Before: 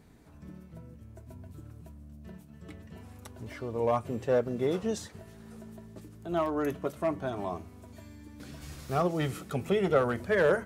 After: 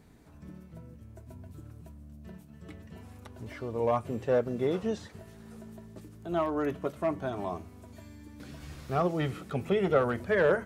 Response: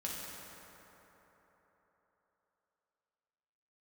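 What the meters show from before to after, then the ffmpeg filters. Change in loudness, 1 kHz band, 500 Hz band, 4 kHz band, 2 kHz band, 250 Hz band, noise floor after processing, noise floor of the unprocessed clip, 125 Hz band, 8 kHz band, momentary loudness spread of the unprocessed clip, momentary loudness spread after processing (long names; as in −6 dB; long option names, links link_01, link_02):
0.0 dB, 0.0 dB, 0.0 dB, −2.0 dB, 0.0 dB, 0.0 dB, −53 dBFS, −53 dBFS, 0.0 dB, can't be measured, 22 LU, 22 LU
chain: -filter_complex "[0:a]acrossover=split=4100[link_01][link_02];[link_02]acompressor=threshold=-58dB:ratio=4:attack=1:release=60[link_03];[link_01][link_03]amix=inputs=2:normalize=0"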